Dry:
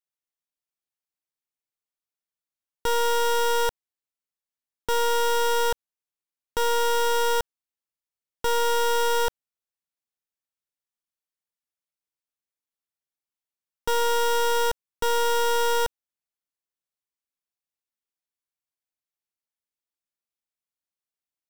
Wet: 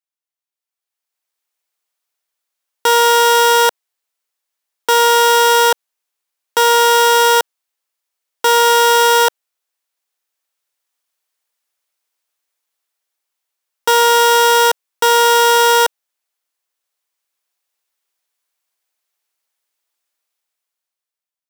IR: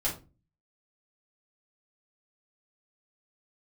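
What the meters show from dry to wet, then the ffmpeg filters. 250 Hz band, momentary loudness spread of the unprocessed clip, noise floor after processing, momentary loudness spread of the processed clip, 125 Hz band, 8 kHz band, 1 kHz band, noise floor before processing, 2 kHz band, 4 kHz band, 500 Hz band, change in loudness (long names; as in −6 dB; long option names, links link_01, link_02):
can't be measured, 8 LU, below −85 dBFS, 8 LU, below −10 dB, +14.0 dB, +13.5 dB, below −85 dBFS, +14.0 dB, +14.0 dB, +10.5 dB, +13.0 dB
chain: -af "highpass=490,dynaudnorm=framelen=260:gausssize=9:maxgain=15.5dB,volume=1dB"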